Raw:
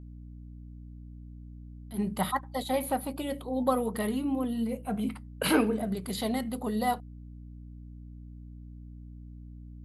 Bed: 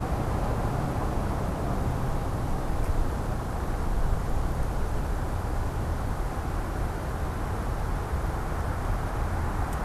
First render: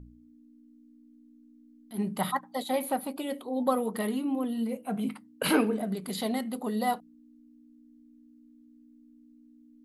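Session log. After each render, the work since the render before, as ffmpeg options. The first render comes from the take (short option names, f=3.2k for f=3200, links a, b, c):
-af "bandreject=f=60:t=h:w=4,bandreject=f=120:t=h:w=4,bandreject=f=180:t=h:w=4"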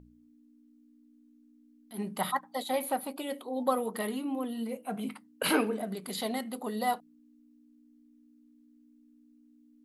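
-af "lowshelf=f=220:g=-10.5"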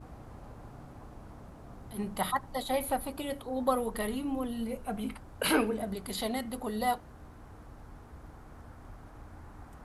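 -filter_complex "[1:a]volume=-20.5dB[a];[0:a][a]amix=inputs=2:normalize=0"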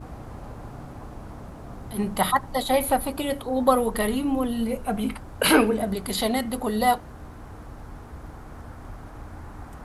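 -af "volume=9dB"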